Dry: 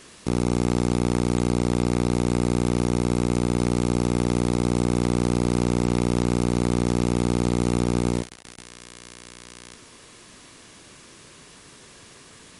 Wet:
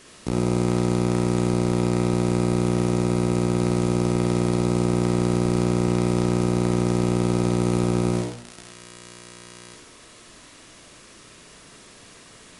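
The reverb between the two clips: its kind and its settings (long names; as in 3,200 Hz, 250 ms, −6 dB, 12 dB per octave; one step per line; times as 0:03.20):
comb and all-pass reverb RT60 0.49 s, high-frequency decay 0.55×, pre-delay 15 ms, DRR 0.5 dB
level −2 dB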